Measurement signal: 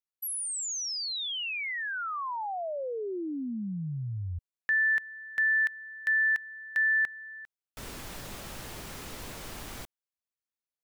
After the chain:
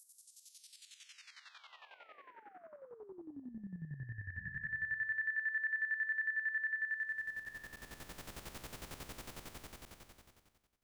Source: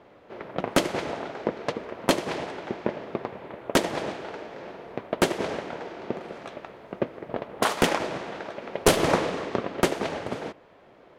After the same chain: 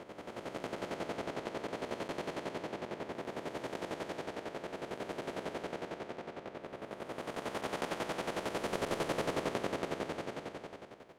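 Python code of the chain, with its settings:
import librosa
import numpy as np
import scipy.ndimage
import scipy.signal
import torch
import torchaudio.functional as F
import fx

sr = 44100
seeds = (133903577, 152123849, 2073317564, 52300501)

y = fx.spec_blur(x, sr, span_ms=1000.0)
y = fx.chopper(y, sr, hz=11.0, depth_pct=65, duty_pct=35)
y = y * librosa.db_to_amplitude(-2.0)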